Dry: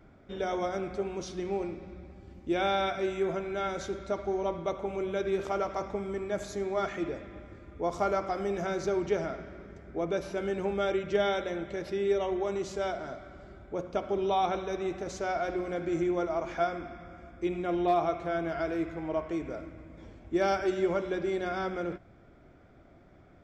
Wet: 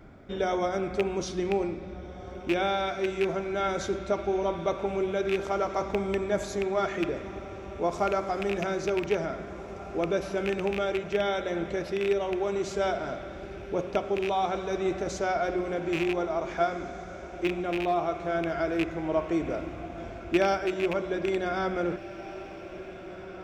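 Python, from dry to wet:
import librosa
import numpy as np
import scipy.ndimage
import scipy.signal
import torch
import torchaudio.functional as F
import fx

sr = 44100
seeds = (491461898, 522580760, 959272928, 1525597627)

y = fx.rattle_buzz(x, sr, strikes_db=-34.0, level_db=-22.0)
y = fx.rider(y, sr, range_db=4, speed_s=0.5)
y = fx.echo_diffused(y, sr, ms=1838, feedback_pct=56, wet_db=-14.5)
y = y * 10.0 ** (2.5 / 20.0)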